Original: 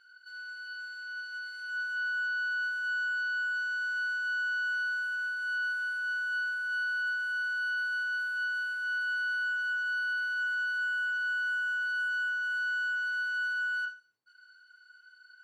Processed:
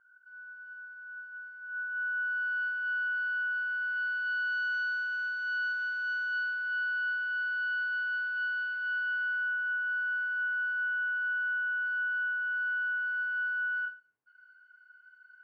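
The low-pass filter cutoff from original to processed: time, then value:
low-pass filter 24 dB per octave
0:01.60 1,400 Hz
0:02.64 2,700 Hz
0:03.80 2,700 Hz
0:04.67 5,000 Hz
0:06.25 5,000 Hz
0:06.77 3,500 Hz
0:08.80 3,500 Hz
0:09.56 2,300 Hz

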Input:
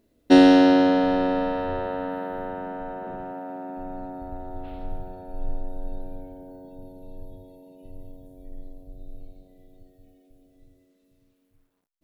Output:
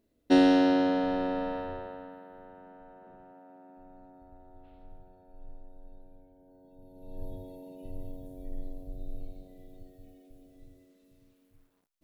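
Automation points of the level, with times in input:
0:01.56 −7.5 dB
0:02.23 −18 dB
0:06.34 −18 dB
0:06.88 −10.5 dB
0:07.25 +2 dB

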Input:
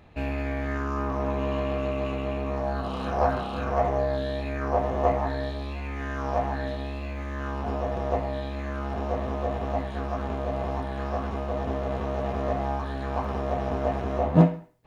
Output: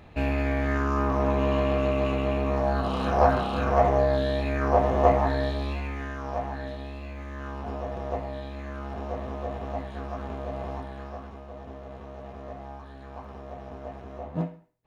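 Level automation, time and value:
0:05.72 +3.5 dB
0:06.20 −4.5 dB
0:10.73 −4.5 dB
0:11.40 −12.5 dB

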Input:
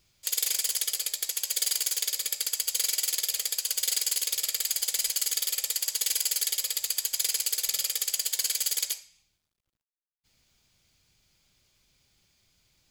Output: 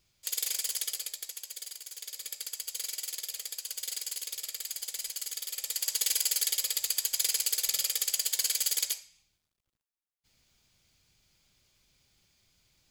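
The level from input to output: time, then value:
0:00.88 −4.5 dB
0:01.82 −17 dB
0:02.28 −9 dB
0:05.47 −9 dB
0:05.91 −1 dB

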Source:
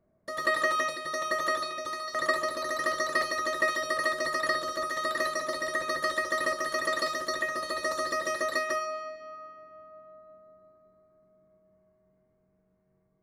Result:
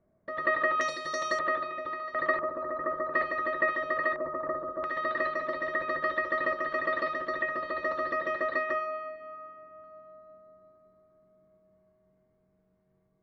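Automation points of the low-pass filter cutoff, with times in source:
low-pass filter 24 dB per octave
2,600 Hz
from 0:00.81 7,200 Hz
from 0:01.39 2,600 Hz
from 0:02.39 1,400 Hz
from 0:03.14 2,500 Hz
from 0:04.16 1,200 Hz
from 0:04.84 2,800 Hz
from 0:09.84 4,500 Hz

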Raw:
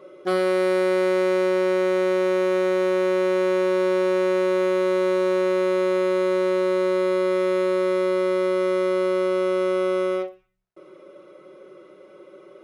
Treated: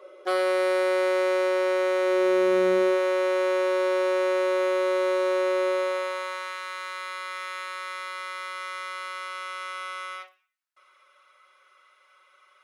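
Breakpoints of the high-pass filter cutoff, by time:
high-pass filter 24 dB per octave
0:02.01 450 Hz
0:02.72 150 Hz
0:03.00 450 Hz
0:05.68 450 Hz
0:06.57 1,100 Hz

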